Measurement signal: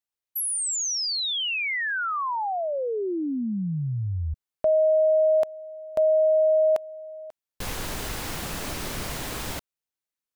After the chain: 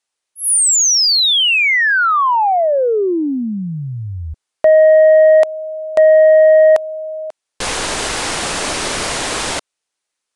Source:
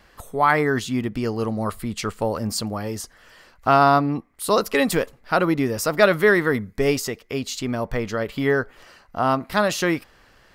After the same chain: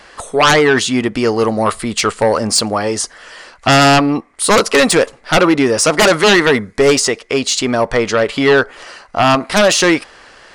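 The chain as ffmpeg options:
-af "bass=f=250:g=-12,treble=f=4k:g=1,aresample=22050,aresample=44100,aeval=exprs='0.794*sin(PI/2*5.01*val(0)/0.794)':c=same,volume=-3.5dB"

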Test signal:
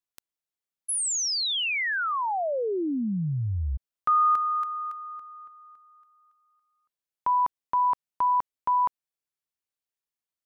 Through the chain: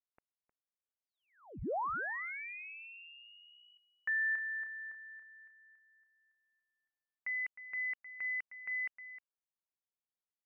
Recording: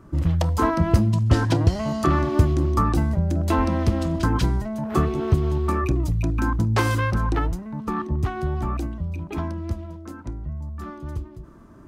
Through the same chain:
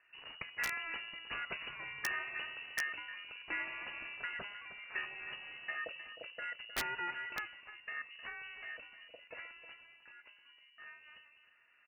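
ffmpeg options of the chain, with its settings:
-af "aderivative,aecho=1:1:310:0.224,lowpass=f=2.6k:t=q:w=0.5098,lowpass=f=2.6k:t=q:w=0.6013,lowpass=f=2.6k:t=q:w=0.9,lowpass=f=2.6k:t=q:w=2.563,afreqshift=-3000,aeval=exprs='(mod(29.9*val(0)+1,2)-1)/29.9':c=same,volume=3dB"

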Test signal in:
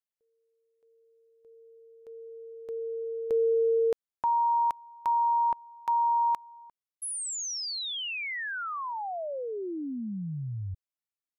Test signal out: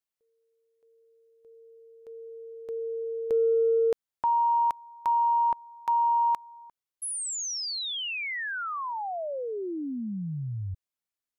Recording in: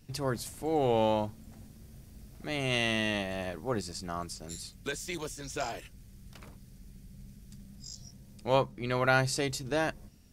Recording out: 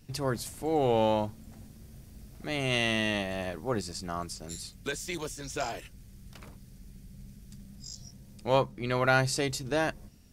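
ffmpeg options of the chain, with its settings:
-af "acontrast=81,volume=-5.5dB"

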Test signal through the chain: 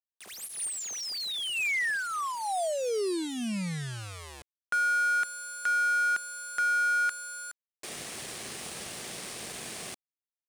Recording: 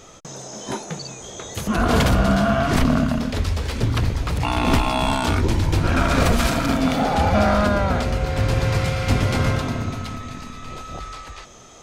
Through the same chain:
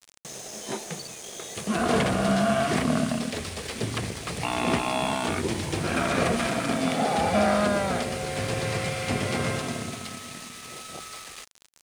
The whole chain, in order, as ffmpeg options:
-filter_complex "[0:a]acrossover=split=2600[a][b];[b]acompressor=threshold=-36dB:ratio=16[c];[a][c]amix=inputs=2:normalize=0,acrusher=bits=5:mix=0:aa=0.000001,highpass=200,equalizer=f=280:t=q:w=4:g=-7,equalizer=f=550:t=q:w=4:g=-3,equalizer=f=940:t=q:w=4:g=-7,equalizer=f=1.4k:t=q:w=4:g=-6,equalizer=f=9.1k:t=q:w=4:g=7,lowpass=f=9.9k:w=0.5412,lowpass=f=9.9k:w=1.3066,aeval=exprs='sgn(val(0))*max(abs(val(0))-0.00562,0)':c=same"

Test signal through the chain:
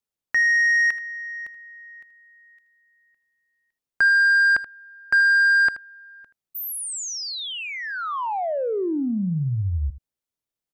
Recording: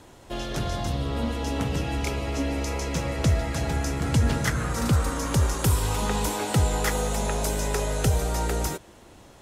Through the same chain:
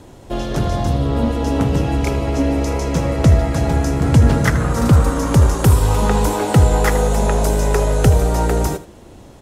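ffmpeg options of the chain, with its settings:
-filter_complex "[0:a]asplit=2[a][b];[b]adynamicsmooth=sensitivity=1.5:basefreq=830,volume=2dB[c];[a][c]amix=inputs=2:normalize=0,aecho=1:1:79:0.178,volume=3.5dB"

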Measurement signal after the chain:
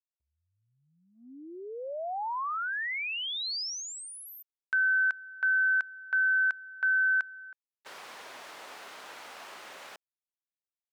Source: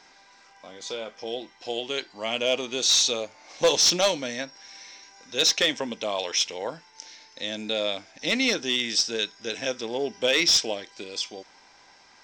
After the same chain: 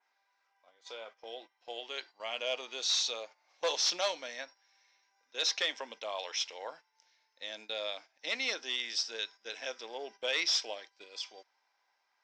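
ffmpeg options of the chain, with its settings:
-af "highpass=710,aemphasis=mode=reproduction:type=75kf,agate=range=-13dB:threshold=-45dB:ratio=16:detection=peak,adynamicequalizer=threshold=0.00631:dfrequency=4800:dqfactor=1.7:tfrequency=4800:tqfactor=1.7:attack=5:release=100:ratio=0.375:range=2.5:mode=boostabove:tftype=bell,volume=-5.5dB"

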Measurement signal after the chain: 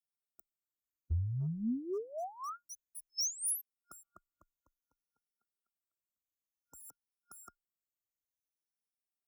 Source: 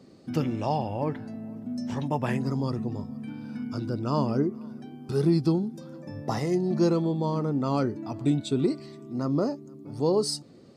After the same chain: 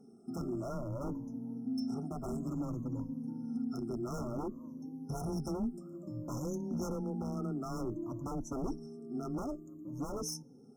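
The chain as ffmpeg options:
-af "afftfilt=real='re*pow(10,18/40*sin(2*PI*(1.1*log(max(b,1)*sr/1024/100)/log(2)-(-0.56)*(pts-256)/sr)))':imag='im*pow(10,18/40*sin(2*PI*(1.1*log(max(b,1)*sr/1024/100)/log(2)-(-0.56)*(pts-256)/sr)))':win_size=1024:overlap=0.75,aeval=exprs='0.0794*(abs(mod(val(0)/0.0794+3,4)-2)-1)':c=same,equalizer=f=125:t=o:w=1:g=-5,equalizer=f=500:t=o:w=1:g=-7,equalizer=f=1k:t=o:w=1:g=-9,equalizer=f=2k:t=o:w=1:g=-7,equalizer=f=8k:t=o:w=1:g=-5,afftfilt=real='re*(1-between(b*sr/4096,1400,5200))':imag='im*(1-between(b*sr/4096,1400,5200))':win_size=4096:overlap=0.75,afreqshift=15,volume=-4dB"

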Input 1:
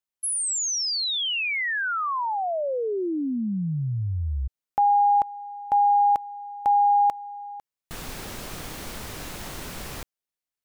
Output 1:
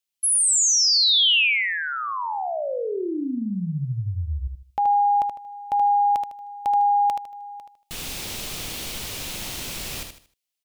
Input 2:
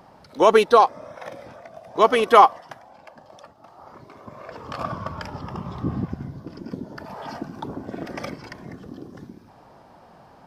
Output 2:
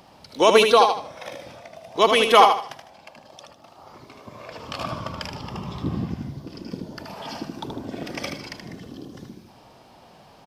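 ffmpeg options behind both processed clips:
-af "highshelf=f=2.1k:t=q:w=1.5:g=7,aecho=1:1:77|154|231|308:0.501|0.155|0.0482|0.0149,volume=-1dB"

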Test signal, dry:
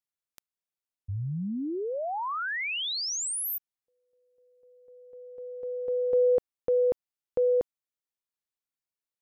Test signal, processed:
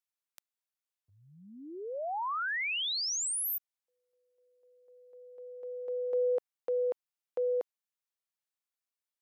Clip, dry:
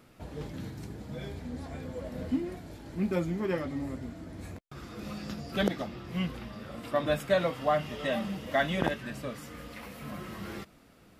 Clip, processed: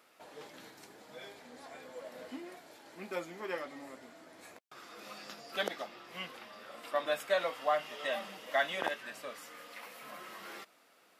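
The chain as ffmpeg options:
-af "highpass=600,volume=-1.5dB"

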